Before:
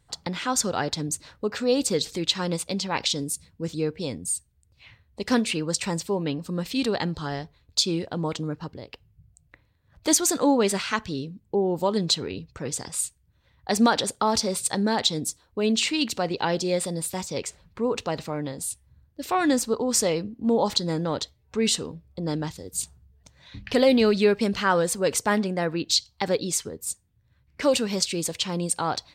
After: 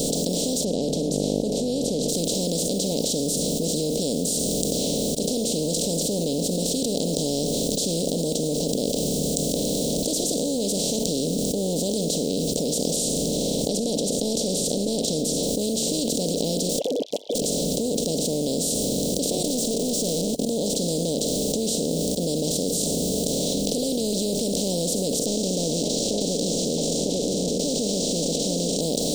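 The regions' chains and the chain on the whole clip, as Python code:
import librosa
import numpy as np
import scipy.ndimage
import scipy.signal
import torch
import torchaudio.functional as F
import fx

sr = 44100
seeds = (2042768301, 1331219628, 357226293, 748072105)

y = fx.lowpass(x, sr, hz=1100.0, slope=12, at=(0.63, 2.08), fade=0.02)
y = fx.hum_notches(y, sr, base_hz=50, count=3, at=(0.63, 2.08), fade=0.02)
y = fx.dmg_buzz(y, sr, base_hz=50.0, harmonics=37, level_db=-49.0, tilt_db=-6, odd_only=False, at=(0.63, 2.08), fade=0.02)
y = fx.chain(y, sr, fx.air_absorb(metres=83.0),
    fx.over_compress(threshold_db=-25.0, ratio=-0.5), at=(12.96, 15.43))
y = fx.chain(y, sr, fx.sine_speech(),
    fx.highpass(hz=480.0, slope=24),
    fx.overflow_wrap(gain_db=28.0), at=(16.69, 17.42))
y = fx.chain(y, sr, fx.comb(ms=4.7, depth=1.0),
    fx.leveller(passes=5), at=(19.44, 20.45))
y = fx.chain(y, sr, fx.cvsd(bps=32000),
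    fx.high_shelf(hz=4800.0, db=12.0),
    fx.echo_stepped(ms=281, hz=2600.0, octaves=-1.4, feedback_pct=70, wet_db=-11), at=(25.26, 28.81))
y = fx.bin_compress(y, sr, power=0.2)
y = scipy.signal.sosfilt(scipy.signal.ellip(3, 1.0, 80, [640.0, 3400.0], 'bandstop', fs=sr, output='sos'), y)
y = fx.level_steps(y, sr, step_db=21)
y = F.gain(torch.from_numpy(y), -3.5).numpy()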